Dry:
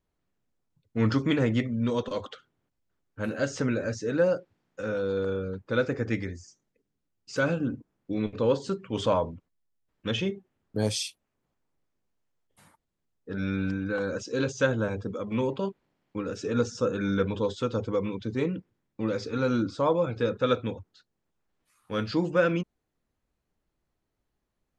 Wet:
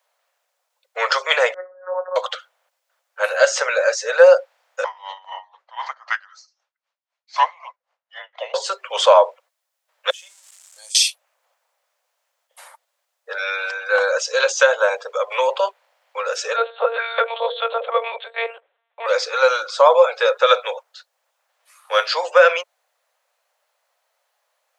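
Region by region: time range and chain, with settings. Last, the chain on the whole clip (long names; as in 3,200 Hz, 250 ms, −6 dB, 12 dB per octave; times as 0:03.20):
0:01.54–0:02.16: Butterworth low-pass 1,700 Hz 96 dB per octave + tuned comb filter 55 Hz, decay 0.21 s, harmonics odd, mix 70% + phases set to zero 183 Hz
0:04.84–0:08.54: band-pass filter 580–4,400 Hz + frequency shifter −490 Hz + tremolo with a sine in dB 3.9 Hz, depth 22 dB
0:10.10–0:10.95: converter with a step at zero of −39.5 dBFS + resonant band-pass 7,700 Hz, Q 3.5 + downward compressor 2 to 1, threshold −58 dBFS
0:16.56–0:19.06: mains-hum notches 50/100/150/200/250/300/350/400/450/500 Hz + one-pitch LPC vocoder at 8 kHz 230 Hz
whole clip: Butterworth high-pass 520 Hz 72 dB per octave; boost into a limiter +17.5 dB; level −1 dB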